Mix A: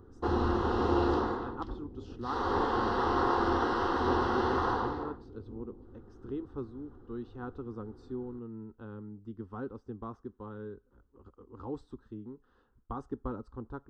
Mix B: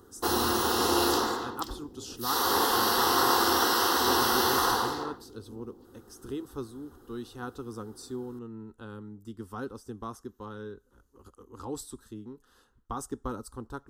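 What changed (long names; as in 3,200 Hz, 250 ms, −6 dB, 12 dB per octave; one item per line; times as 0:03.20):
background: add high-pass filter 190 Hz 6 dB per octave
master: remove head-to-tape spacing loss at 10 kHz 43 dB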